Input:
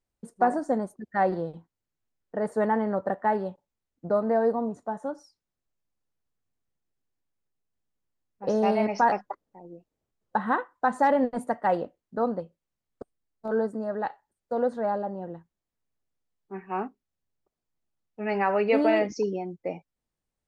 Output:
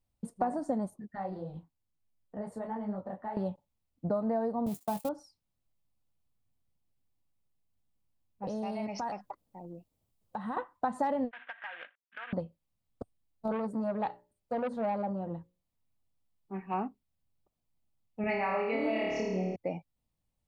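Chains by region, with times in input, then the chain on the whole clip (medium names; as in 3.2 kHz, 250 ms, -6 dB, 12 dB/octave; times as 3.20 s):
0.90–3.37 s: compression 2:1, threshold -38 dBFS + detune thickener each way 52 cents
4.66–5.09 s: zero-crossing glitches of -30 dBFS + gate -37 dBFS, range -39 dB + doubling 20 ms -12 dB
8.47–10.57 s: compression 2.5:1, threshold -40 dBFS + treble shelf 4.5 kHz +8.5 dB
11.31–12.33 s: CVSD coder 16 kbps + resonant high-pass 1.6 kHz, resonance Q 15 + compression, threshold -35 dBFS
13.52–16.74 s: hum notches 60/120/180/240/300/360/420/480/540/600 Hz + transformer saturation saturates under 960 Hz
18.21–19.56 s: peaking EQ 2.2 kHz +8 dB 0.43 oct + flutter echo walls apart 4.6 m, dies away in 1.1 s + tape noise reduction on one side only decoder only
whole clip: bass shelf 320 Hz +3.5 dB; compression, threshold -27 dBFS; fifteen-band graphic EQ 100 Hz +4 dB, 400 Hz -7 dB, 1.6 kHz -8 dB, 6.3 kHz -5 dB; trim +1.5 dB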